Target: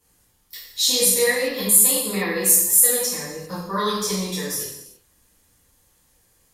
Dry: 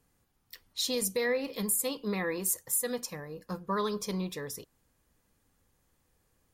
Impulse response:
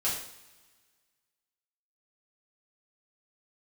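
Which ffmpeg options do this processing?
-filter_complex "[0:a]highshelf=frequency=3300:gain=9.5[link_01];[1:a]atrim=start_sample=2205,afade=type=out:start_time=0.33:duration=0.01,atrim=end_sample=14994,asetrate=30429,aresample=44100[link_02];[link_01][link_02]afir=irnorm=-1:irlink=0,volume=-2.5dB"

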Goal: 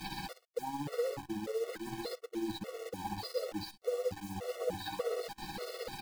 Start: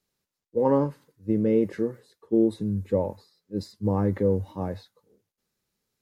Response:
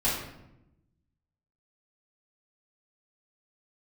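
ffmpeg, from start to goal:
-af "aeval=exprs='val(0)+0.5*0.0596*sgn(val(0))':channel_layout=same,aecho=1:1:413:0.299,areverse,acompressor=threshold=-35dB:ratio=6,areverse,aresample=11025,aresample=44100,agate=range=-35dB:threshold=-39dB:ratio=16:detection=peak,aecho=1:1:6.2:0.5,tremolo=f=16:d=0.6,acompressor=mode=upward:threshold=-40dB:ratio=2.5,equalizer=frequency=500:width_type=o:width=0.33:gain=10,equalizer=frequency=800:width_type=o:width=0.33:gain=11,equalizer=frequency=3150:width_type=o:width=0.33:gain=-4,acrusher=bits=8:dc=4:mix=0:aa=0.000001,equalizer=frequency=130:width_type=o:width=0.94:gain=-4.5,afftfilt=real='re*gt(sin(2*PI*1.7*pts/sr)*(1-2*mod(floor(b*sr/1024/370),2)),0)':imag='im*gt(sin(2*PI*1.7*pts/sr)*(1-2*mod(floor(b*sr/1024/370),2)),0)':win_size=1024:overlap=0.75"

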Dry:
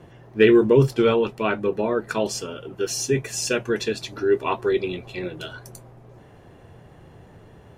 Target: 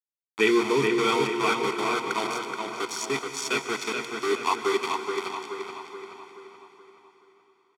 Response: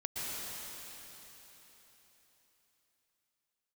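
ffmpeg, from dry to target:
-filter_complex "[0:a]aeval=exprs='val(0)*gte(abs(val(0)),0.0708)':channel_layout=same,highpass=410,lowpass=7800,aecho=1:1:0.9:0.83,asplit=2[link_01][link_02];[link_02]adelay=427,lowpass=frequency=4000:poles=1,volume=-4.5dB,asplit=2[link_03][link_04];[link_04]adelay=427,lowpass=frequency=4000:poles=1,volume=0.5,asplit=2[link_05][link_06];[link_06]adelay=427,lowpass=frequency=4000:poles=1,volume=0.5,asplit=2[link_07][link_08];[link_08]adelay=427,lowpass=frequency=4000:poles=1,volume=0.5,asplit=2[link_09][link_10];[link_10]adelay=427,lowpass=frequency=4000:poles=1,volume=0.5,asplit=2[link_11][link_12];[link_12]adelay=427,lowpass=frequency=4000:poles=1,volume=0.5[link_13];[link_01][link_03][link_05][link_07][link_09][link_11][link_13]amix=inputs=7:normalize=0,asplit=2[link_14][link_15];[1:a]atrim=start_sample=2205[link_16];[link_15][link_16]afir=irnorm=-1:irlink=0,volume=-10dB[link_17];[link_14][link_17]amix=inputs=2:normalize=0,volume=-4dB"

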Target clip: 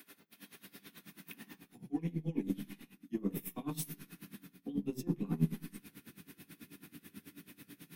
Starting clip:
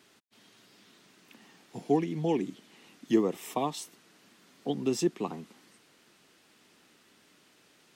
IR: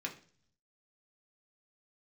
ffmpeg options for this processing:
-filter_complex "[0:a]areverse,acompressor=threshold=-45dB:ratio=5,areverse,asubboost=boost=7.5:cutoff=220,aeval=exprs='0.0596*(cos(1*acos(clip(val(0)/0.0596,-1,1)))-cos(1*PI/2))+0.00531*(cos(3*acos(clip(val(0)/0.0596,-1,1)))-cos(3*PI/2))+0.00376*(cos(4*acos(clip(val(0)/0.0596,-1,1)))-cos(4*PI/2))':channel_layout=same[link_01];[1:a]atrim=start_sample=2205,afade=type=out:start_time=0.43:duration=0.01,atrim=end_sample=19404[link_02];[link_01][link_02]afir=irnorm=-1:irlink=0,aexciter=amount=7.7:drive=5.4:freq=9900,aeval=exprs='val(0)*pow(10,-21*(0.5-0.5*cos(2*PI*9.2*n/s))/20)':channel_layout=same,volume=9.5dB"

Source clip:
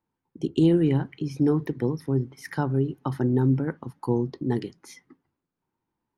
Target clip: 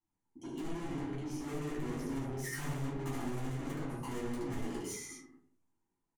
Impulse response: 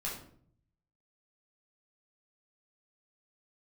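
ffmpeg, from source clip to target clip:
-filter_complex "[0:a]lowpass=8100,equalizer=frequency=170:width_type=o:width=1.7:gain=-2.5,dynaudnorm=framelen=210:gausssize=13:maxgain=13dB,flanger=delay=0.9:depth=7:regen=-76:speed=0.38:shape=triangular,aecho=1:1:73|106|122|184|221:0.562|0.141|0.422|0.251|0.316,flanger=delay=9:depth=5.1:regen=-33:speed=0.87:shape=triangular,asoftclip=type=tanh:threshold=-39.5dB,aexciter=amount=6.2:drive=1.5:freq=6300[link_01];[1:a]atrim=start_sample=2205,asetrate=74970,aresample=44100[link_02];[link_01][link_02]afir=irnorm=-1:irlink=0,volume=1.5dB"

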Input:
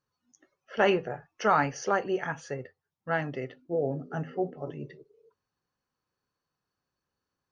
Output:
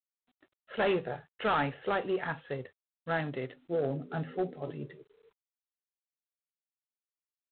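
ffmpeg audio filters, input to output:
ffmpeg -i in.wav -af "aeval=exprs='0.266*(cos(1*acos(clip(val(0)/0.266,-1,1)))-cos(1*PI/2))+0.0531*(cos(5*acos(clip(val(0)/0.266,-1,1)))-cos(5*PI/2))':channel_layout=same,volume=-7dB" -ar 8000 -c:a adpcm_g726 -b:a 24k out.wav

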